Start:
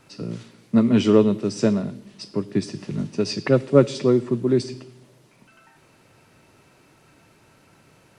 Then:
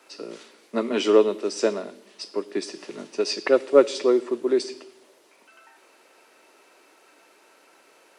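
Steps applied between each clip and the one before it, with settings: HPF 350 Hz 24 dB/oct; gain +1.5 dB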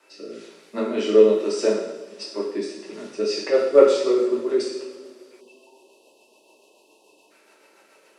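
rotary speaker horn 1.2 Hz, later 7 Hz, at 2.9; two-slope reverb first 0.76 s, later 3.2 s, from -19 dB, DRR -4.5 dB; spectral delete 5.4–7.31, 1100–2500 Hz; gain -3 dB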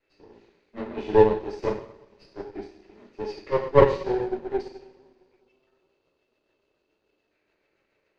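minimum comb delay 0.46 ms; air absorption 190 m; upward expander 1.5:1, over -36 dBFS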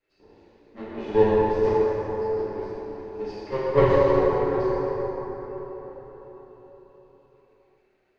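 plate-style reverb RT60 4.9 s, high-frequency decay 0.45×, DRR -6 dB; gain -5.5 dB

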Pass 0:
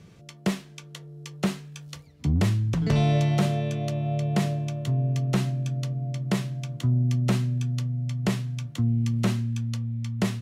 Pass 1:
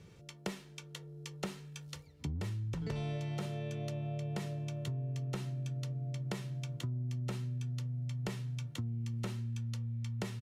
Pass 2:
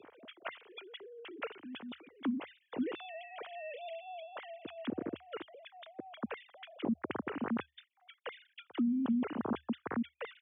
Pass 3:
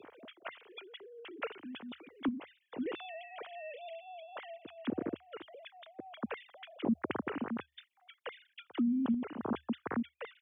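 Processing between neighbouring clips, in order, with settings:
comb 2.2 ms, depth 35%; compressor, threshold -30 dBFS, peak gain reduction 11.5 dB; gain -5.5 dB
sine-wave speech; dynamic EQ 590 Hz, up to -6 dB, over -52 dBFS, Q 1.2; frequency shift +74 Hz
random-step tremolo; gain +2.5 dB

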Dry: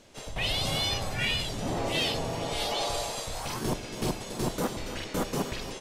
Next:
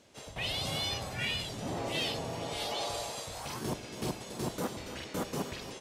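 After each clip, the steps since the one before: HPF 63 Hz; gain -5 dB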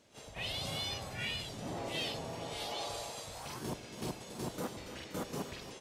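pre-echo 38 ms -12.5 dB; gain -4.5 dB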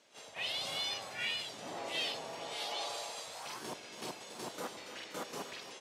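weighting filter A; gain +1 dB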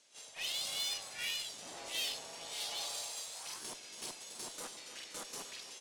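elliptic low-pass 11000 Hz; added harmonics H 6 -21 dB, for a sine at -25 dBFS; pre-emphasis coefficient 0.8; gain +6 dB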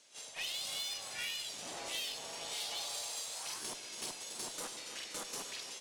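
compressor 5:1, threshold -40 dBFS, peak gain reduction 7 dB; on a send at -13.5 dB: reverb RT60 2.5 s, pre-delay 5 ms; on the sum: gain +3.5 dB

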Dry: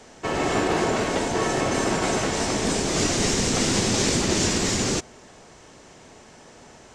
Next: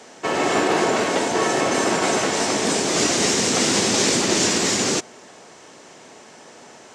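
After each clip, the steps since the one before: Bessel high-pass 250 Hz, order 2; gain +4.5 dB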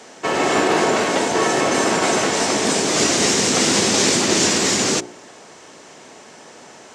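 de-hum 59.68 Hz, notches 15; gain +2.5 dB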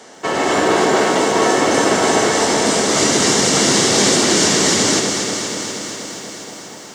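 notch 2500 Hz, Q 9; on a send: echo with dull and thin repeats by turns 0.12 s, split 900 Hz, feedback 87%, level -6 dB; on the sum: lo-fi delay 0.134 s, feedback 80%, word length 7-bit, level -13 dB; gain +1 dB

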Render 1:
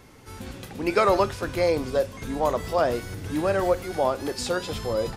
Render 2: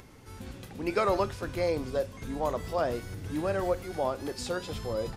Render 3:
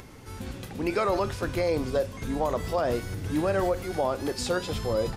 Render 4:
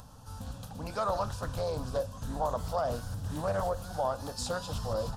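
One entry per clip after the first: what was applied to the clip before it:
low shelf 240 Hz +4 dB; upward compressor, threshold -40 dBFS; gain -7 dB
limiter -22 dBFS, peak gain reduction 6.5 dB; gain +5.5 dB
fixed phaser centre 880 Hz, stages 4; Doppler distortion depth 0.34 ms; gain -1.5 dB

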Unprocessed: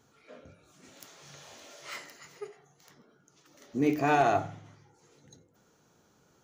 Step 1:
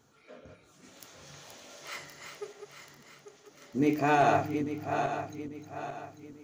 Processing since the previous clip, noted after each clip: regenerating reverse delay 0.422 s, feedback 61%, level -6 dB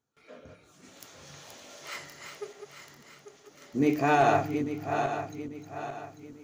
gate with hold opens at -52 dBFS; gain +1.5 dB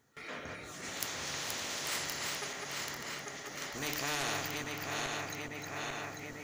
bell 1900 Hz +13.5 dB 0.2 oct; spectral compressor 4:1; gain -4.5 dB

